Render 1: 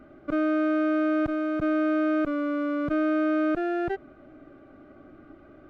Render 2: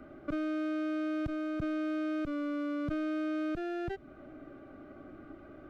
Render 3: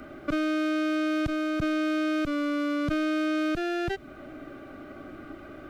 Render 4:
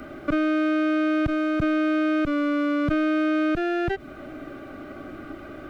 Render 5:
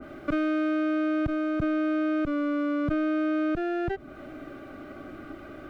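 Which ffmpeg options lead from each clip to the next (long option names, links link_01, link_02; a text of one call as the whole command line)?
ffmpeg -i in.wav -filter_complex "[0:a]acrossover=split=210|3000[link_01][link_02][link_03];[link_02]acompressor=threshold=-37dB:ratio=5[link_04];[link_01][link_04][link_03]amix=inputs=3:normalize=0" out.wav
ffmpeg -i in.wav -af "highshelf=frequency=2000:gain=11.5,volume=6dB" out.wav
ffmpeg -i in.wav -filter_complex "[0:a]acrossover=split=2900[link_01][link_02];[link_02]acompressor=threshold=-56dB:ratio=4:attack=1:release=60[link_03];[link_01][link_03]amix=inputs=2:normalize=0,volume=4.5dB" out.wav
ffmpeg -i in.wav -af "adynamicequalizer=threshold=0.00891:dfrequency=1600:dqfactor=0.7:tfrequency=1600:tqfactor=0.7:attack=5:release=100:ratio=0.375:range=3:mode=cutabove:tftype=highshelf,volume=-3.5dB" out.wav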